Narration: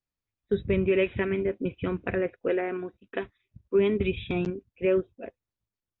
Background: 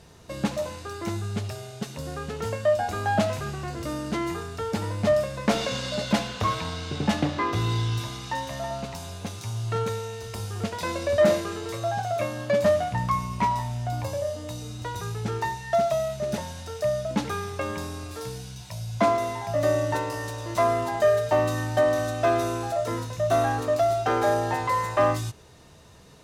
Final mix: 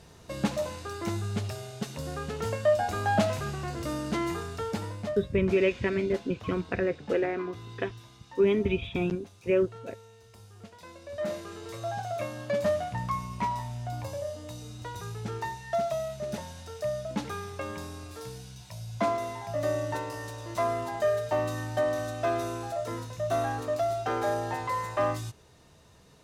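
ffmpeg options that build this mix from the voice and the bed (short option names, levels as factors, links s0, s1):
-filter_complex "[0:a]adelay=4650,volume=0.944[s0];[1:a]volume=3.55,afade=t=out:st=4.52:d=0.7:silence=0.141254,afade=t=in:st=11.04:d=0.86:silence=0.237137[s1];[s0][s1]amix=inputs=2:normalize=0"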